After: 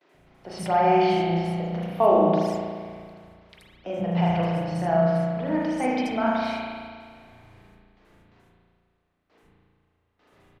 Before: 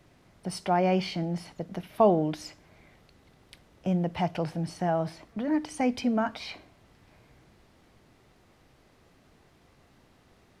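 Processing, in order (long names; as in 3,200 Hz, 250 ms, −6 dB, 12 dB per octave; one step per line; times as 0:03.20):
noise gate with hold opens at −49 dBFS
three-band delay without the direct sound mids, highs, lows 80/130 ms, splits 270/5,400 Hz
convolution reverb RT60 1.9 s, pre-delay 35 ms, DRR −5 dB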